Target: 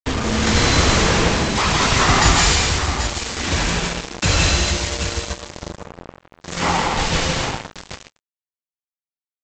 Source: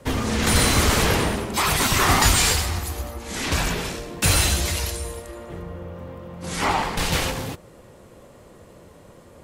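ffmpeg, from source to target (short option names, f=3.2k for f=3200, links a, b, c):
-af "aecho=1:1:68|162|168|243|784:0.178|0.282|0.631|0.316|0.355,agate=range=-33dB:threshold=-42dB:ratio=3:detection=peak,aresample=16000,acrusher=bits=3:mix=0:aa=0.5,aresample=44100,volume=1.5dB"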